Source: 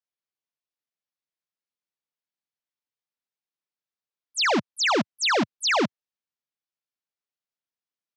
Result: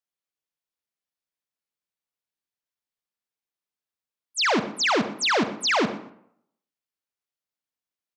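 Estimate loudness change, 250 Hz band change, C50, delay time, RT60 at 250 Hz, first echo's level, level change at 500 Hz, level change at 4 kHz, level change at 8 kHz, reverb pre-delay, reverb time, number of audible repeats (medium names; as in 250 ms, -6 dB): 0.0 dB, +0.5 dB, 11.0 dB, 122 ms, 0.65 s, -19.0 dB, +0.5 dB, 0.0 dB, 0.0 dB, 33 ms, 0.70 s, 2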